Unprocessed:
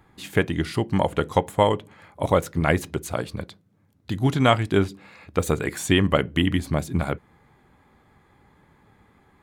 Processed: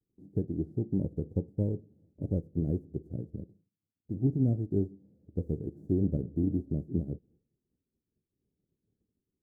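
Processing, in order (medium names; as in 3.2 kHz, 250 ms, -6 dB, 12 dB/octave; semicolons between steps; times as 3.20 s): formants flattened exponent 0.3; inverse Chebyshev low-pass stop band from 1 kHz, stop band 50 dB; expander -55 dBFS; trim -3.5 dB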